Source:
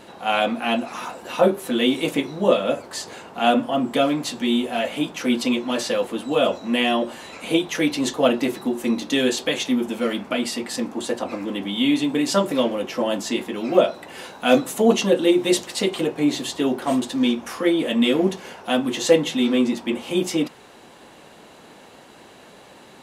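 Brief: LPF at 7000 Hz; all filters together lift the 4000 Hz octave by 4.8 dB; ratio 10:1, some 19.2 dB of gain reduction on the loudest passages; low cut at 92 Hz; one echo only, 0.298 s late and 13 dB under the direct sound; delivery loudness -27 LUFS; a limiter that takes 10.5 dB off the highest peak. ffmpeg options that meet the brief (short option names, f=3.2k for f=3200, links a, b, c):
-af "highpass=92,lowpass=7k,equalizer=f=4k:t=o:g=6.5,acompressor=threshold=-30dB:ratio=10,alimiter=level_in=2dB:limit=-24dB:level=0:latency=1,volume=-2dB,aecho=1:1:298:0.224,volume=9dB"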